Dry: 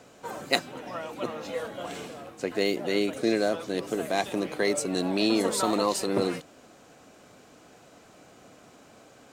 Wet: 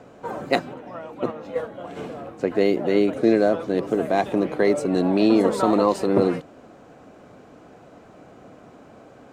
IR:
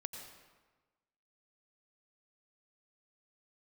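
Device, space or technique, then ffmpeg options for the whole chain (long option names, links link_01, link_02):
through cloth: -filter_complex "[0:a]asplit=3[link_01][link_02][link_03];[link_01]afade=type=out:start_time=0.73:duration=0.02[link_04];[link_02]agate=range=-6dB:threshold=-32dB:ratio=16:detection=peak,afade=type=in:start_time=0.73:duration=0.02,afade=type=out:start_time=1.96:duration=0.02[link_05];[link_03]afade=type=in:start_time=1.96:duration=0.02[link_06];[link_04][link_05][link_06]amix=inputs=3:normalize=0,highshelf=frequency=2500:gain=-18,volume=8dB"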